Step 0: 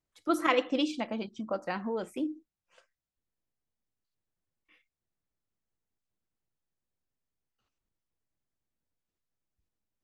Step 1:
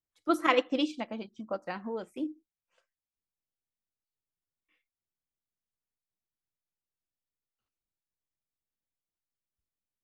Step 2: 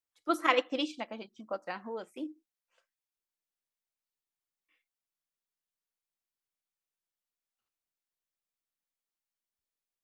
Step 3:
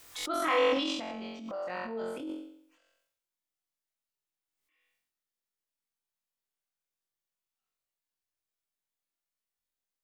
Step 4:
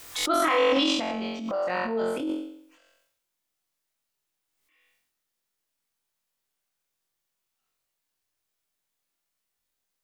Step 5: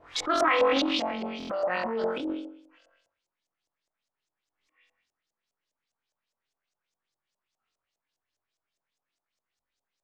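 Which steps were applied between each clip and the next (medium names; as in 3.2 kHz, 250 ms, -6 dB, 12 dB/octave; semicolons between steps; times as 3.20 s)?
upward expansion 1.5:1, over -46 dBFS; trim +2 dB
bass shelf 250 Hz -12 dB
flutter echo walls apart 3.8 m, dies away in 0.67 s; transient shaper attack -5 dB, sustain +10 dB; swell ahead of each attack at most 55 dB/s; trim -4.5 dB
peak limiter -22.5 dBFS, peak gain reduction 7 dB; trim +9 dB
LFO low-pass saw up 4.9 Hz 600–7300 Hz; buffer glitch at 1.38 s, samples 1024, times 4; loudspeaker Doppler distortion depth 0.16 ms; trim -3 dB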